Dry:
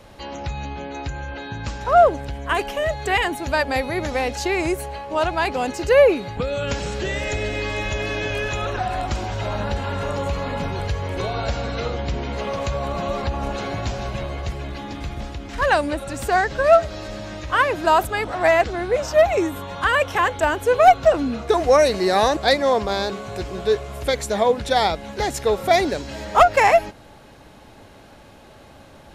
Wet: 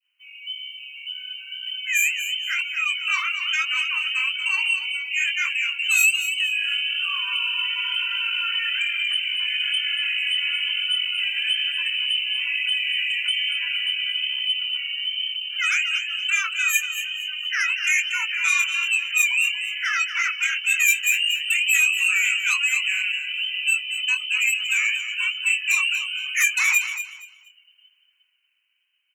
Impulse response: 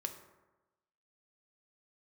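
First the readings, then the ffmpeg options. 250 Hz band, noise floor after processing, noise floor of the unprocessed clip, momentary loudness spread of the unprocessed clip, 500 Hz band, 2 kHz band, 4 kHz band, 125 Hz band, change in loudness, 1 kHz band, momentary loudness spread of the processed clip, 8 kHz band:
under -40 dB, -61 dBFS, -46 dBFS, 15 LU, under -40 dB, +6.0 dB, +10.0 dB, under -40 dB, 0.0 dB, -18.5 dB, 7 LU, +8.0 dB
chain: -filter_complex "[0:a]lowpass=f=2.6k:t=q:w=0.5098,lowpass=f=2.6k:t=q:w=0.6013,lowpass=f=2.6k:t=q:w=0.9,lowpass=f=2.6k:t=q:w=2.563,afreqshift=-3100,asoftclip=type=tanh:threshold=-16dB,asplit=2[a][b];[1:a]atrim=start_sample=2205,asetrate=57330,aresample=44100,adelay=49[c];[b][c]afir=irnorm=-1:irlink=0,volume=-16.5dB[d];[a][d]amix=inputs=2:normalize=0,acrusher=bits=7:mode=log:mix=0:aa=0.000001,dynaudnorm=f=330:g=11:m=9dB,adynamicequalizer=threshold=0.0562:dfrequency=1400:dqfactor=0.71:tfrequency=1400:tqfactor=0.71:attack=5:release=100:ratio=0.375:range=2.5:mode=boostabove:tftype=bell,asplit=2[e][f];[f]acompressor=threshold=-21dB:ratio=6,volume=2dB[g];[e][g]amix=inputs=2:normalize=0,highpass=f=830:w=0.5412,highpass=f=830:w=1.3066,aderivative,flanger=delay=20:depth=6.6:speed=1.1,afftdn=nr=21:nf=-30,aecho=1:1:235|470|705:0.299|0.0687|0.0158,volume=-2dB"

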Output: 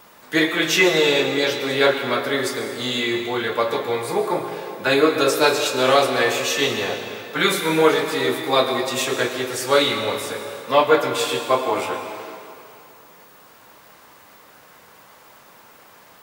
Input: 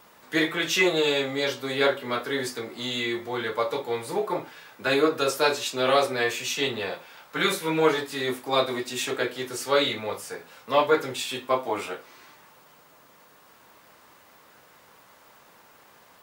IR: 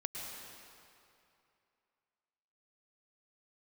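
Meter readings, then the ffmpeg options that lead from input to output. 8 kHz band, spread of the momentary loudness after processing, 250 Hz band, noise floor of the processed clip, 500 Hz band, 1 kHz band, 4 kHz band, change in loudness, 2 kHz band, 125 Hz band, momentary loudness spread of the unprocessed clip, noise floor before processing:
+6.5 dB, 10 LU, +6.0 dB, -49 dBFS, +6.0 dB, +6.0 dB, +6.0 dB, +6.0 dB, +6.0 dB, +5.5 dB, 11 LU, -55 dBFS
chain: -filter_complex "[0:a]asplit=2[a][b];[1:a]atrim=start_sample=2205,highshelf=f=10k:g=4[c];[b][c]afir=irnorm=-1:irlink=0,volume=0.5dB[d];[a][d]amix=inputs=2:normalize=0"

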